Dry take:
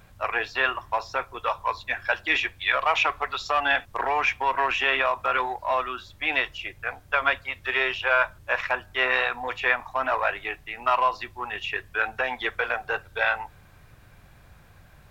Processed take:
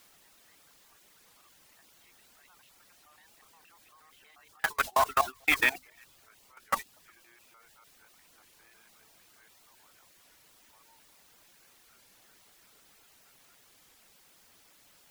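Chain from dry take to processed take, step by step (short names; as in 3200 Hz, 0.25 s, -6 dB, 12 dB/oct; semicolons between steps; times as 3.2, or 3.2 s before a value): local time reversal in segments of 0.134 s; Doppler pass-by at 5.39, 42 m/s, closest 20 m; bell 540 Hz -11.5 dB 0.37 oct; notch 2900 Hz, Q 11; requantised 6-bit, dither triangular; level quantiser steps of 14 dB; high shelf 5600 Hz -4 dB; delay with a stepping band-pass 0.117 s, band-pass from 230 Hz, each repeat 1.4 oct, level -5 dB; reverb removal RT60 0.54 s; gate -37 dBFS, range -22 dB; record warp 33 1/3 rpm, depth 160 cents; gain +6.5 dB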